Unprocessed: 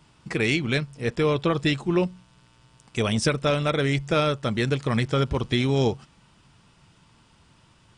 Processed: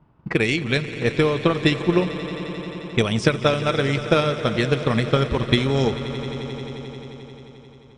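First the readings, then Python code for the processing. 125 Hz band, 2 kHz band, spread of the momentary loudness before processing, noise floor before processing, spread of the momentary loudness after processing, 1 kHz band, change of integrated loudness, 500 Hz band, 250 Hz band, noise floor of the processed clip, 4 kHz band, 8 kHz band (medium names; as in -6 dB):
+2.5 dB, +4.0 dB, 5 LU, -59 dBFS, 13 LU, +3.5 dB, +2.5 dB, +4.0 dB, +3.5 dB, -47 dBFS, +3.5 dB, -1.0 dB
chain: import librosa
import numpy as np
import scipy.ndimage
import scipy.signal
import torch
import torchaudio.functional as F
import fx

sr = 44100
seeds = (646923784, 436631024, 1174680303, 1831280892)

y = fx.transient(x, sr, attack_db=8, sustain_db=0)
y = fx.env_lowpass(y, sr, base_hz=1000.0, full_db=-15.0)
y = fx.echo_swell(y, sr, ms=88, loudest=5, wet_db=-17.0)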